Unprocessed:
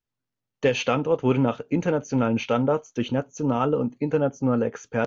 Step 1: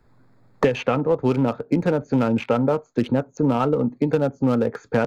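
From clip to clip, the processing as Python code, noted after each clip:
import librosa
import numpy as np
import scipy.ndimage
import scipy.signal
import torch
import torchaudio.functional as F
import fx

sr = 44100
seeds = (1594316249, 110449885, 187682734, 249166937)

y = fx.wiener(x, sr, points=15)
y = fx.band_squash(y, sr, depth_pct=100)
y = y * 10.0 ** (2.0 / 20.0)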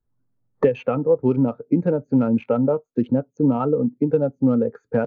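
y = fx.spectral_expand(x, sr, expansion=1.5)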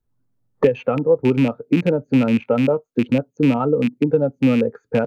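y = fx.rattle_buzz(x, sr, strikes_db=-21.0, level_db=-20.0)
y = y * 10.0 ** (2.0 / 20.0)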